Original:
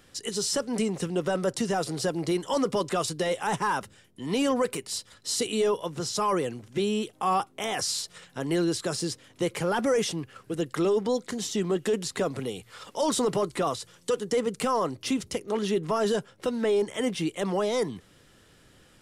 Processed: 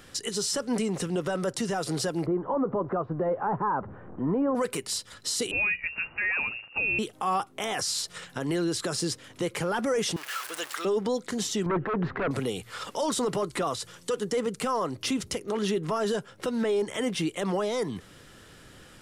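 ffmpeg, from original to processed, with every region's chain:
-filter_complex "[0:a]asettb=1/sr,asplit=3[a][b][c];[a]atrim=end=2.264[d];[b]atrim=start=2.26:end=4.55,asetpts=PTS-STARTPTS,afade=t=in:d=0.004:c=qsin,afade=t=out:st=2.286:d=0.004:c=qsin,aeval=exprs='val(0)+0.5*0.00708*sgn(val(0))':c=same,lowpass=f=1.2k:w=0.5412,lowpass=f=1.2k:w=1.3066[e];[c]atrim=start=4.546[f];[d][e]acrossfade=d=0.004:c1=hsin:c2=qsin[g];[g][f]acrossfade=d=0.004:c1=qsin:c2=hsin,asettb=1/sr,asplit=3[h][i][j];[h]atrim=end=5.514[k];[i]atrim=start=5.51:end=6.99,asetpts=PTS-STARTPTS,afade=t=in:d=0.004:c=qsin,afade=t=out:st=1.476:d=0.004:c=qsin,lowpass=f=2.5k:t=q:w=0.5098,lowpass=f=2.5k:t=q:w=0.6013,lowpass=f=2.5k:t=q:w=0.9,lowpass=f=2.5k:t=q:w=2.563,afreqshift=-2900,tiltshelf=f=910:g=7,bandreject=f=60:t=h:w=6,bandreject=f=120:t=h:w=6,bandreject=f=180:t=h:w=6,bandreject=f=240:t=h:w=6,bandreject=f=300:t=h:w=6,bandreject=f=360:t=h:w=6[l];[j]atrim=start=6.986[m];[k][l]acrossfade=d=0.004:c1=hsin:c2=qsin[n];[n][m]acrossfade=d=0.004:c1=qsin:c2=hsin,asettb=1/sr,asplit=3[o][p][q];[o]atrim=end=10.164[r];[p]atrim=start=10.16:end=10.85,asetpts=PTS-STARTPTS,afade=t=in:d=0.004:c=qsin,afade=t=out:st=0.686:d=0.004:c=qsin,aeval=exprs='val(0)+0.5*0.0168*sgn(val(0))':c=same,highpass=1.1k[s];[q]atrim=start=10.846[t];[r][s]acrossfade=d=0.004:c1=hsin:c2=qsin[u];[u][t]acrossfade=d=0.004:c1=qsin:c2=hsin,asettb=1/sr,asplit=3[v][w][x];[v]atrim=end=11.664[y];[w]atrim=start=11.66:end=12.31,asetpts=PTS-STARTPTS,afade=t=in:d=0.004:c=qsin,afade=t=out:st=0.646:d=0.004:c=qsin,lowpass=f=1.7k:w=0.5412,lowpass=f=1.7k:w=1.3066,aeval=exprs='0.133*sin(PI/2*2.24*val(0)/0.133)':c=same,acompressor=threshold=-29dB:ratio=5:attack=3.2:release=140:knee=1:detection=peak[z];[x]atrim=start=12.306[aa];[y][z]acrossfade=d=0.004:c1=hsin:c2=qsin[ab];[ab][aa]acrossfade=d=0.004:c1=qsin:c2=hsin,equalizer=f=1.4k:t=o:w=0.77:g=2.5,alimiter=level_in=2dB:limit=-24dB:level=0:latency=1:release=192,volume=-2dB,volume=6dB"

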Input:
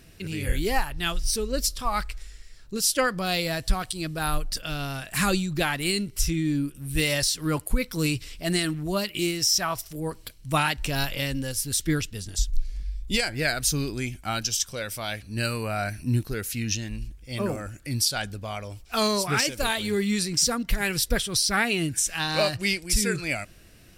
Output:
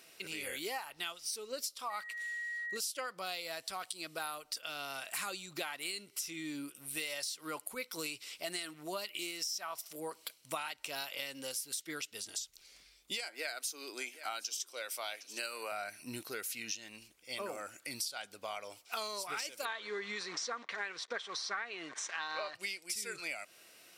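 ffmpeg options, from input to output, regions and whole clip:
-filter_complex "[0:a]asettb=1/sr,asplit=3[a][b][c];[a]atrim=end=1.904[d];[b]atrim=start=1.9:end=2.77,asetpts=PTS-STARTPTS,afade=t=in:d=0.004:c=qsin,afade=t=out:st=0.866:d=0.004:c=qsin,aeval=exprs='val(0)+0.02*sin(2*PI*1900*n/s)':c=same,bandreject=f=5.2k:w=5.7[e];[c]atrim=start=2.766[f];[d][e]acrossfade=d=0.004:c1=hsin:c2=qsin[g];[g][f]acrossfade=d=0.004:c1=qsin:c2=hsin,asettb=1/sr,asplit=3[h][i][j];[h]atrim=end=13.244[k];[i]atrim=start=13.24:end=15.72,asetpts=PTS-STARTPTS,afade=t=in:d=0.004:c=qsin,afade=t=out:st=2.476:d=0.004:c=qsin,highpass=f=270:w=0.5412,highpass=f=270:w=1.3066,aecho=1:1:760:0.075,atrim=end_sample=109368[l];[j]atrim=start=15.716[m];[k][l]acrossfade=d=0.004:c1=hsin:c2=qsin[n];[n][m]acrossfade=d=0.004:c1=qsin:c2=hsin,asettb=1/sr,asplit=3[o][p][q];[o]atrim=end=19.654[r];[p]atrim=start=19.65:end=22.55,asetpts=PTS-STARTPTS,afade=t=in:d=0.004:c=qsin,afade=t=out:st=2.896:d=0.004:c=qsin,acrusher=bits=7:dc=4:mix=0:aa=0.000001,highpass=170,equalizer=f=430:t=q:w=4:g=4,equalizer=f=1.1k:t=q:w=4:g=8,equalizer=f=1.7k:t=q:w=4:g=9,equalizer=f=2.8k:t=q:w=4:g=-5,equalizer=f=4.9k:t=q:w=4:g=-7,lowpass=f=5.3k:w=0.5412,lowpass=f=5.3k:w=1.3066[s];[q]atrim=start=22.546[t];[r][s]acrossfade=d=0.004:c1=hsin:c2=qsin[u];[u][t]acrossfade=d=0.004:c1=qsin:c2=hsin,highpass=580,bandreject=f=1.7k:w=9.5,acompressor=threshold=-36dB:ratio=6,volume=-1dB"

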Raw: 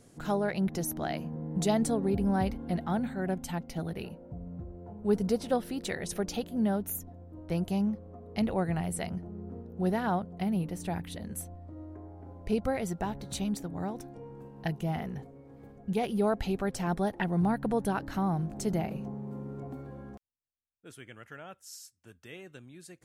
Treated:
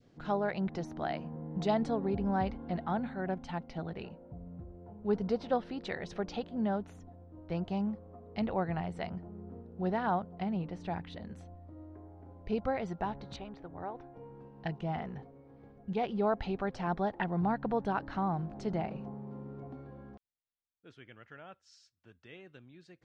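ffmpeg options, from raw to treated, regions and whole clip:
-filter_complex "[0:a]asettb=1/sr,asplit=3[a][b][c];[a]atrim=end=13.364[d];[b]atrim=start=13.36:end=14.17,asetpts=PTS-STARTPTS,afade=t=in:d=0.004:c=qsin,afade=t=out:st=0.806:d=0.004:c=qsin,lowpass=2.4k,equalizer=f=200:t=o:w=0.62:g=-13[e];[c]atrim=start=14.166[f];[d][e]acrossfade=d=0.004:c1=hsin:c2=qsin[g];[g][f]acrossfade=d=0.004:c1=qsin:c2=hsin,lowpass=f=4.7k:w=0.5412,lowpass=f=4.7k:w=1.3066,adynamicequalizer=threshold=0.00562:dfrequency=960:dqfactor=0.83:tfrequency=960:tqfactor=0.83:attack=5:release=100:ratio=0.375:range=3:mode=boostabove:tftype=bell,volume=-5dB"

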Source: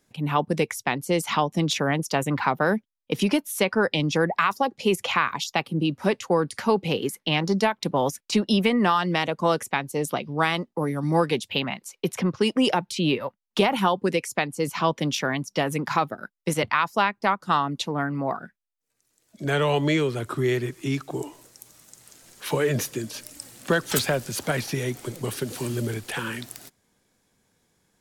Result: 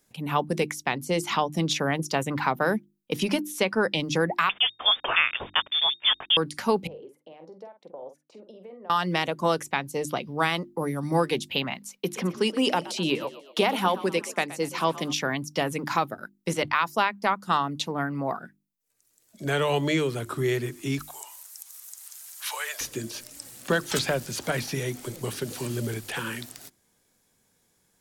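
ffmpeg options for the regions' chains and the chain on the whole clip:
-filter_complex "[0:a]asettb=1/sr,asplit=3[a][b][c];[a]atrim=end=4.494[d];[b]atrim=start=4.49:end=6.37,asetpts=PTS-STARTPTS,afade=t=in:d=0.004:c=qsin,afade=t=out:st=1.876:d=0.004:c=qsin,aemphasis=mode=production:type=75kf,acrusher=bits=4:mix=0:aa=0.5,lowpass=f=3.1k:t=q:w=0.5098,lowpass=f=3.1k:t=q:w=0.6013,lowpass=f=3.1k:t=q:w=0.9,lowpass=f=3.1k:t=q:w=2.563,afreqshift=-3700[e];[c]atrim=start=6.366[f];[d][e]acrossfade=d=0.004:c1=hsin:c2=qsin[g];[g][f]acrossfade=d=0.004:c1=qsin:c2=hsin,asettb=1/sr,asplit=3[h][i][j];[h]atrim=end=6.874[k];[i]atrim=start=6.87:end=8.9,asetpts=PTS-STARTPTS,afade=t=in:d=0.004:c=qsin,afade=t=out:st=2.026:d=0.004:c=qsin,acompressor=threshold=-29dB:ratio=10:attack=3.2:release=140:knee=1:detection=peak,bandpass=f=550:t=q:w=3,asplit=2[l][m];[m]adelay=47,volume=-9dB[n];[l][n]amix=inputs=2:normalize=0,atrim=end_sample=89523[o];[j]atrim=start=8.896[p];[k][o]acrossfade=d=0.004:c1=hsin:c2=qsin[q];[q][p]acrossfade=d=0.004:c1=qsin:c2=hsin,asettb=1/sr,asplit=3[r][s][t];[r]atrim=end=11.984[u];[s]atrim=start=11.98:end=15.13,asetpts=PTS-STARTPTS,afade=t=in:d=0.004:c=qsin,afade=t=out:st=3.146:d=0.004:c=qsin,highpass=160,asplit=5[v][w][x][y][z];[w]adelay=122,afreqshift=41,volume=-16.5dB[aa];[x]adelay=244,afreqshift=82,volume=-22.5dB[ab];[y]adelay=366,afreqshift=123,volume=-28.5dB[ac];[z]adelay=488,afreqshift=164,volume=-34.6dB[ad];[v][aa][ab][ac][ad]amix=inputs=5:normalize=0,atrim=end_sample=138915[ae];[t]atrim=start=15.126[af];[u][ae]acrossfade=d=0.004:c1=hsin:c2=qsin[ag];[ag][af]acrossfade=d=0.004:c1=qsin:c2=hsin,asettb=1/sr,asplit=3[ah][ai][aj];[ah]atrim=end=20.994[ak];[ai]atrim=start=20.99:end=22.81,asetpts=PTS-STARTPTS,afade=t=in:d=0.004:c=qsin,afade=t=out:st=1.816:d=0.004:c=qsin,highpass=f=840:w=0.5412,highpass=f=840:w=1.3066,equalizer=f=13k:t=o:w=1.2:g=13.5,aeval=exprs='val(0)+0.00562*(sin(2*PI*50*n/s)+sin(2*PI*2*50*n/s)/2+sin(2*PI*3*50*n/s)/3+sin(2*PI*4*50*n/s)/4+sin(2*PI*5*50*n/s)/5)':c=same[al];[aj]atrim=start=22.806[am];[ak][al]acrossfade=d=0.004:c1=hsin:c2=qsin[an];[an][am]acrossfade=d=0.004:c1=qsin:c2=hsin,acrossover=split=7100[ao][ap];[ap]acompressor=threshold=-46dB:ratio=4:attack=1:release=60[aq];[ao][aq]amix=inputs=2:normalize=0,highshelf=f=8k:g=10,bandreject=f=50:t=h:w=6,bandreject=f=100:t=h:w=6,bandreject=f=150:t=h:w=6,bandreject=f=200:t=h:w=6,bandreject=f=250:t=h:w=6,bandreject=f=300:t=h:w=6,bandreject=f=350:t=h:w=6,volume=-2dB"

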